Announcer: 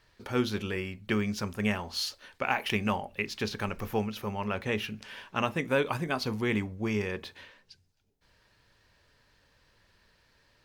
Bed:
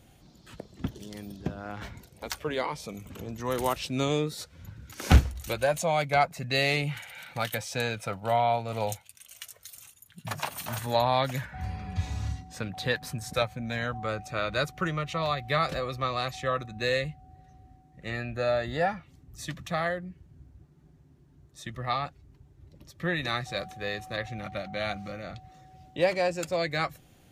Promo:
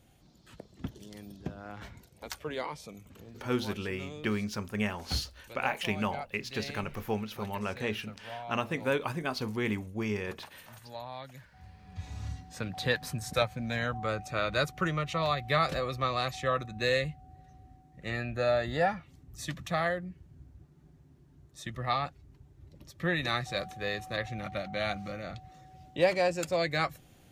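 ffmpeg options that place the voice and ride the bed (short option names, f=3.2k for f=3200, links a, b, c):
-filter_complex "[0:a]adelay=3150,volume=-2.5dB[a];[1:a]volume=11.5dB,afade=t=out:st=2.72:d=0.79:silence=0.251189,afade=t=in:st=11.8:d=0.98:silence=0.141254[b];[a][b]amix=inputs=2:normalize=0"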